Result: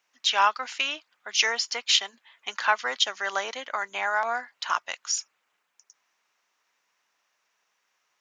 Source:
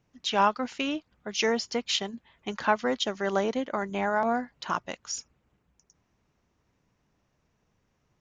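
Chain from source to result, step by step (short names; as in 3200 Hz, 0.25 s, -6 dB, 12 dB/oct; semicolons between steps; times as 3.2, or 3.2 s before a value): HPF 1200 Hz 12 dB/oct; gain +7 dB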